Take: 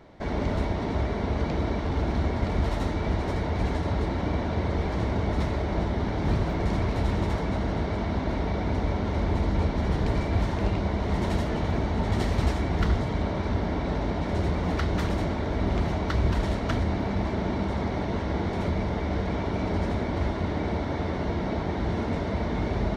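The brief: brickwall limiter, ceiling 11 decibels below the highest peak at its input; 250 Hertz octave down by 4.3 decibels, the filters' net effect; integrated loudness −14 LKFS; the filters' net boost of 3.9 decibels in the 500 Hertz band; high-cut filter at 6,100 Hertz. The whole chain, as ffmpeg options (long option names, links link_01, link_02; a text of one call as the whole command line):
ffmpeg -i in.wav -af "lowpass=6100,equalizer=frequency=250:width_type=o:gain=-8.5,equalizer=frequency=500:width_type=o:gain=7.5,volume=18.5dB,alimiter=limit=-5dB:level=0:latency=1" out.wav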